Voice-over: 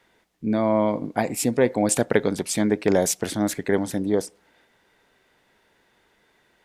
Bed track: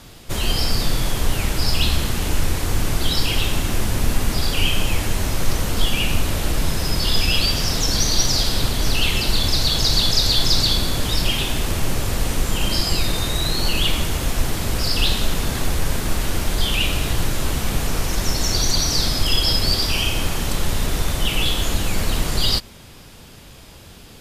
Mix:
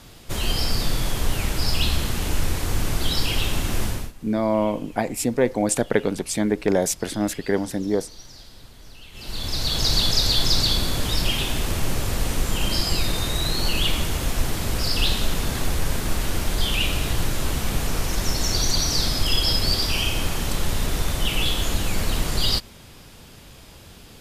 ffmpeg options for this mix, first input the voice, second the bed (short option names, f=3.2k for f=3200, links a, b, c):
-filter_complex "[0:a]adelay=3800,volume=-0.5dB[a];[1:a]volume=20dB,afade=t=out:st=3.85:d=0.27:silence=0.0749894,afade=t=in:st=9.12:d=0.77:silence=0.0707946[b];[a][b]amix=inputs=2:normalize=0"